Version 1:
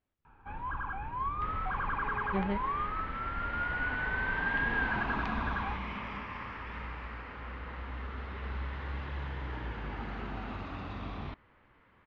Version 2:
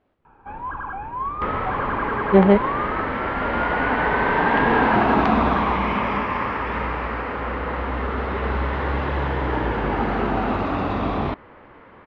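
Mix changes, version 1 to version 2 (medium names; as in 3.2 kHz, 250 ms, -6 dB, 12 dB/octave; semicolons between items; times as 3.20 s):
speech +11.5 dB; second sound +10.5 dB; master: add peaking EQ 510 Hz +11.5 dB 2.9 oct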